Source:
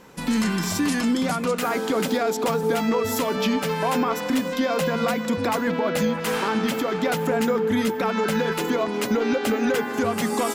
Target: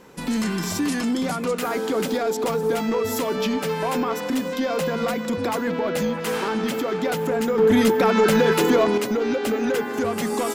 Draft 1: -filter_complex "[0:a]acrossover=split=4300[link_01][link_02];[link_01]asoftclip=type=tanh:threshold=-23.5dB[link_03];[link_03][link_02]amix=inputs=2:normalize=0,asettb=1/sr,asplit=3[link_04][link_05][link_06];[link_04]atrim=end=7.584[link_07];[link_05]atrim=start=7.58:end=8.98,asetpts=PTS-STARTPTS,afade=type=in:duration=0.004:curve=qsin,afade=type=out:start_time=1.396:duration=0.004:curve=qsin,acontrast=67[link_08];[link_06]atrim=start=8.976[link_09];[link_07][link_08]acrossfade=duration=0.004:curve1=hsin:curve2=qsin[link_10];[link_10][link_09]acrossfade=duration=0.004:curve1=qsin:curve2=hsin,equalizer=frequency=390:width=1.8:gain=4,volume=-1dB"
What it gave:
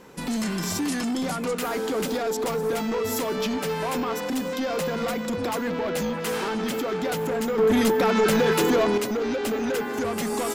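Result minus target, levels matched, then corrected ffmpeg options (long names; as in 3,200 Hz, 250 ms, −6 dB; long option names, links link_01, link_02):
soft clipping: distortion +9 dB
-filter_complex "[0:a]acrossover=split=4300[link_01][link_02];[link_01]asoftclip=type=tanh:threshold=-16dB[link_03];[link_03][link_02]amix=inputs=2:normalize=0,asettb=1/sr,asplit=3[link_04][link_05][link_06];[link_04]atrim=end=7.584[link_07];[link_05]atrim=start=7.58:end=8.98,asetpts=PTS-STARTPTS,afade=type=in:duration=0.004:curve=qsin,afade=type=out:start_time=1.396:duration=0.004:curve=qsin,acontrast=67[link_08];[link_06]atrim=start=8.976[link_09];[link_07][link_08]acrossfade=duration=0.004:curve1=hsin:curve2=qsin[link_10];[link_10][link_09]acrossfade=duration=0.004:curve1=qsin:curve2=hsin,equalizer=frequency=390:width=1.8:gain=4,volume=-1dB"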